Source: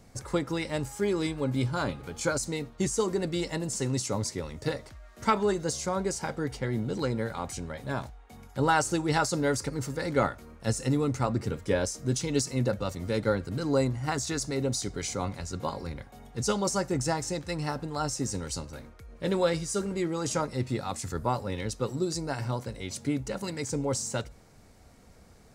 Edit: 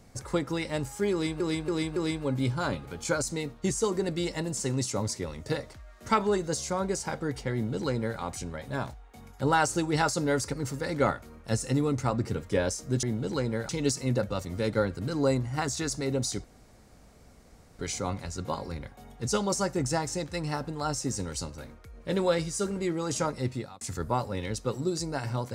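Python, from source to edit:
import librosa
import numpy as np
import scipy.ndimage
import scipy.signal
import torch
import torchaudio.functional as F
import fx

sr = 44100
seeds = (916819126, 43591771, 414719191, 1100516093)

y = fx.edit(x, sr, fx.repeat(start_s=1.12, length_s=0.28, count=4),
    fx.duplicate(start_s=6.69, length_s=0.66, to_s=12.19),
    fx.insert_room_tone(at_s=14.94, length_s=1.35),
    fx.fade_out_span(start_s=20.61, length_s=0.35), tone=tone)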